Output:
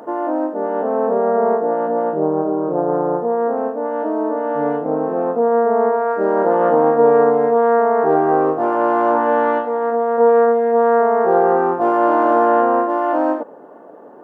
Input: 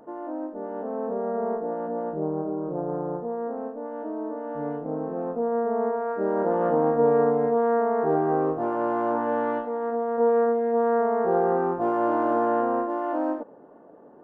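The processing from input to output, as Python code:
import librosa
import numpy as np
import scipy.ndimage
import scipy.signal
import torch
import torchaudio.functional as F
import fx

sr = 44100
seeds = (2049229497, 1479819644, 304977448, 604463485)

p1 = fx.rider(x, sr, range_db=10, speed_s=2.0)
p2 = x + (p1 * 10.0 ** (-2.0 / 20.0))
p3 = fx.highpass(p2, sr, hz=430.0, slope=6)
y = p3 * 10.0 ** (6.5 / 20.0)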